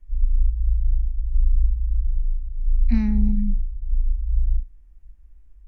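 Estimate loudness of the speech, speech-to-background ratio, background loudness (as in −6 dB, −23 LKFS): −26.0 LKFS, 0.5 dB, −26.5 LKFS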